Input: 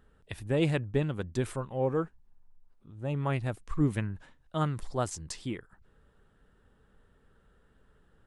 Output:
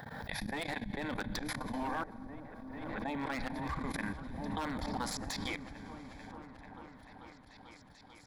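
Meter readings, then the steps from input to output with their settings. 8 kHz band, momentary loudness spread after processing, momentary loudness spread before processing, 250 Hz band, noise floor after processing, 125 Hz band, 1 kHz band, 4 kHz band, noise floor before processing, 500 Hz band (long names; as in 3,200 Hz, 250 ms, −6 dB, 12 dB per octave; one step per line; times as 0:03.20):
−2.0 dB, 16 LU, 11 LU, −5.0 dB, −58 dBFS, −13.0 dB, 0.0 dB, +2.0 dB, −66 dBFS, −10.5 dB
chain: phaser with its sweep stopped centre 1,900 Hz, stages 8
noise gate −60 dBFS, range −11 dB
gate on every frequency bin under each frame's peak −10 dB weak
volume swells 117 ms
in parallel at +2.5 dB: brickwall limiter −40 dBFS, peak gain reduction 11 dB
on the sum: four-comb reverb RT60 2.8 s, combs from 30 ms, DRR 9.5 dB
dynamic equaliser 640 Hz, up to −5 dB, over −55 dBFS, Q 2
wave folding −34.5 dBFS
output level in coarse steps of 23 dB
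thirty-one-band graphic EQ 800 Hz +4 dB, 1,250 Hz +6 dB, 6,300 Hz −6 dB
on a send: echo whose low-pass opens from repeat to repeat 441 ms, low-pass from 200 Hz, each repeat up 1 octave, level −6 dB
on the sum: background raised ahead of every attack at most 24 dB per second
level +8 dB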